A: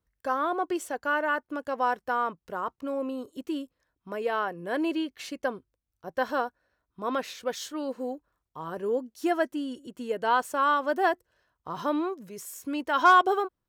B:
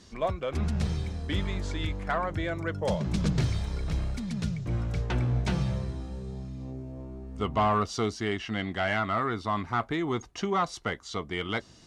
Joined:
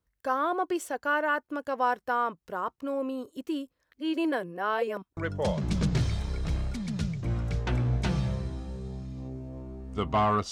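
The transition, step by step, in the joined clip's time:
A
3.92–5.17 s: reverse
5.17 s: go over to B from 2.60 s

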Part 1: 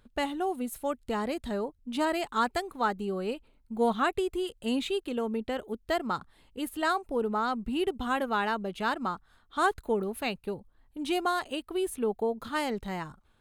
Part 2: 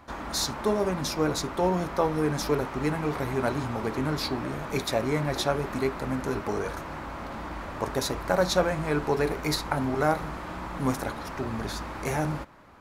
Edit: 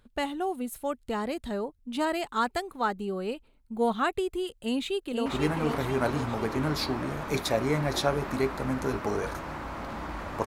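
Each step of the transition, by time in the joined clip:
part 1
4.53–5.26 s: echo throw 490 ms, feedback 50%, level -4 dB
5.26 s: go over to part 2 from 2.68 s

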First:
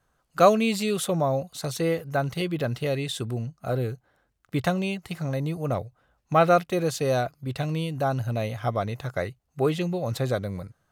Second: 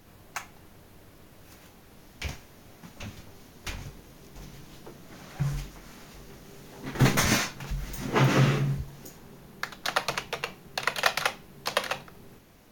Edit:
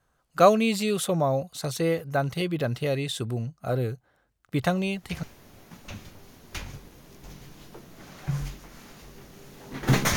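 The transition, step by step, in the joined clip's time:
first
4.62 s: add second from 1.74 s 0.61 s -7 dB
5.23 s: go over to second from 2.35 s

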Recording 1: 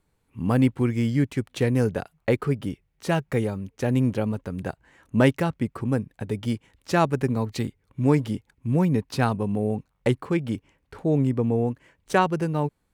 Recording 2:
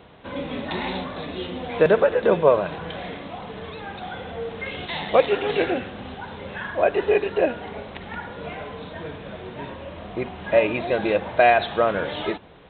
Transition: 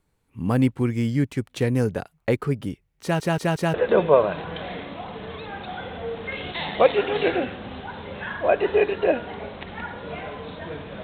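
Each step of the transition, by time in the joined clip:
recording 1
3.02 s: stutter in place 0.18 s, 4 plays
3.74 s: go over to recording 2 from 2.08 s

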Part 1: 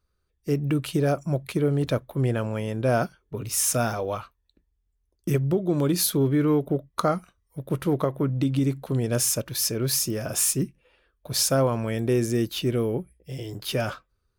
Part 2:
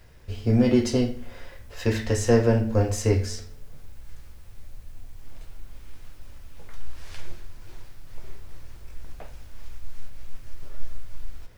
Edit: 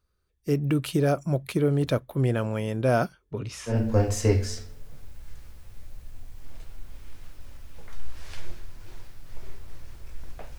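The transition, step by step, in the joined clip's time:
part 1
3.31–3.78 s: low-pass 8 kHz -> 1.5 kHz
3.72 s: go over to part 2 from 2.53 s, crossfade 0.12 s

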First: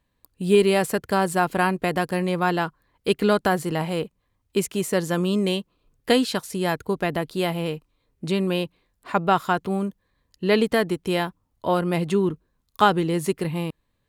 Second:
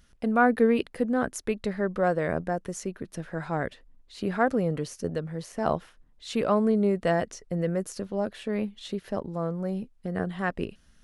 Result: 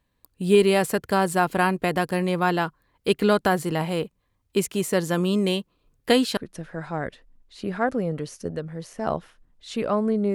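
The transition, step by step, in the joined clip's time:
first
6.37 s: go over to second from 2.96 s

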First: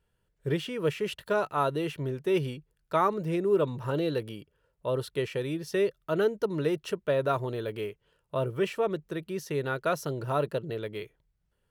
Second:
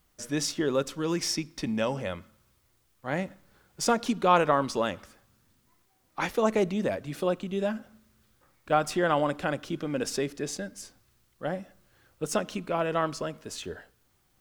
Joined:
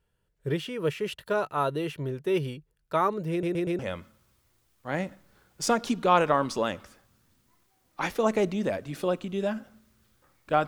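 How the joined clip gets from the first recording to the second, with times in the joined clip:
first
3.31 s: stutter in place 0.12 s, 4 plays
3.79 s: go over to second from 1.98 s

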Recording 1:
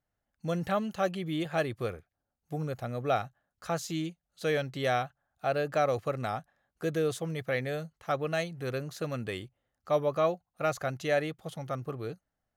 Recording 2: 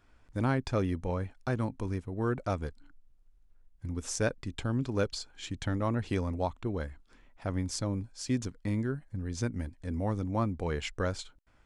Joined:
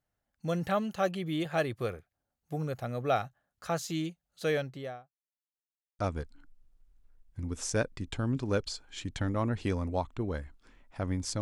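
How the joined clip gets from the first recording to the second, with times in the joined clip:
recording 1
4.43–5.15 s: studio fade out
5.15–5.99 s: mute
5.99 s: go over to recording 2 from 2.45 s

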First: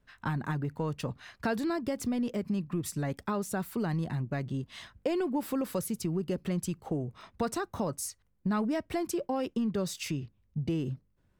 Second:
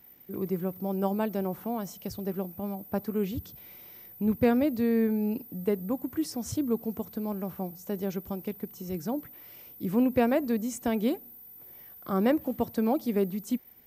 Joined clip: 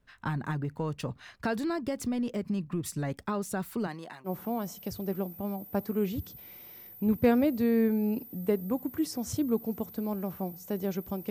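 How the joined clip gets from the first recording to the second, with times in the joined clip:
first
3.86–4.30 s: high-pass 280 Hz -> 960 Hz
4.27 s: go over to second from 1.46 s, crossfade 0.06 s

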